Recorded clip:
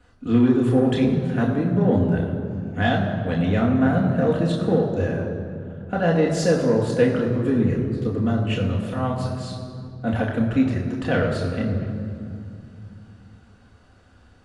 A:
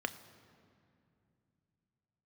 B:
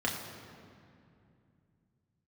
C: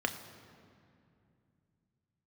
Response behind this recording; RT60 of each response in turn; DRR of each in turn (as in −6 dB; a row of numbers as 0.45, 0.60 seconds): B; 2.6, 2.5, 2.5 seconds; 10.0, −2.5, 6.0 decibels